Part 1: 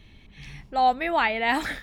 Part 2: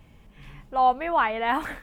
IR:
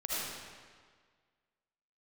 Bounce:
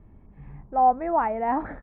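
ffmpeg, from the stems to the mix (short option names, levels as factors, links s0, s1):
-filter_complex "[0:a]volume=1.12[s0];[1:a]volume=-1,adelay=1,volume=0.126[s1];[s0][s1]amix=inputs=2:normalize=0,lowpass=f=1200:w=0.5412,lowpass=f=1200:w=1.3066"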